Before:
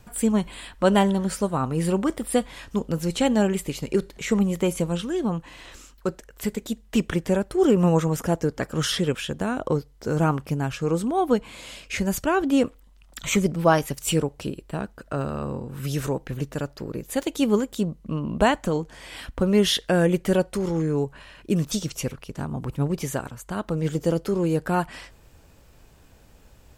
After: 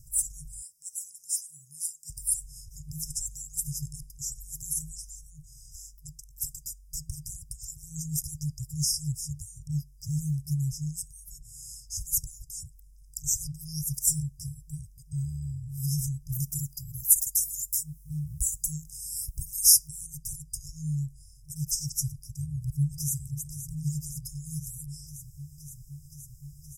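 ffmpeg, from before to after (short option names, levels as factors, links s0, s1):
-filter_complex "[0:a]asettb=1/sr,asplit=3[s0][s1][s2];[s0]atrim=end=0.624[s3];[s1]atrim=start=0.62:end=2.1,asetpts=PTS-STARTPTS,afade=t=in:d=0.004:c=qsin,afade=t=out:st=1.476:d=0.004:c=qsin,highpass=690[s4];[s2]atrim=start=2.096[s5];[s3][s4]acrossfade=d=0.004:c1=hsin:c2=qsin[s6];[s6][s5]acrossfade=d=0.004:c1=qsin:c2=hsin,asettb=1/sr,asplit=3[s7][s8][s9];[s7]atrim=end=16.324[s10];[s8]atrim=start=16.32:end=19.88,asetpts=PTS-STARTPTS,afade=t=in:d=0.004:c=qsin,afade=t=out:st=3.556:d=0.004:c=qsin,aemphasis=mode=production:type=50fm[s11];[s9]atrim=start=19.876[s12];[s10][s11]acrossfade=d=0.004:c1=hsin:c2=qsin[s13];[s13][s12]acrossfade=d=0.004:c1=qsin:c2=hsin,asplit=2[s14][s15];[s15]afade=t=in:st=22.39:d=0.01,afade=t=out:st=23.15:d=0.01,aecho=0:1:520|1040|1560|2080|2600|3120|3640|4160|4680|5200|5720|6240:0.281838|0.239563|0.203628|0.173084|0.147121|0.125053|0.106295|0.0903509|0.0767983|0.0652785|0.0554867|0.0471637[s16];[s14][s16]amix=inputs=2:normalize=0,afftfilt=real='re*(1-between(b*sr/4096,160,4900))':imag='im*(1-between(b*sr/4096,160,4900))':win_size=4096:overlap=0.75,equalizer=f=11000:w=0.88:g=8"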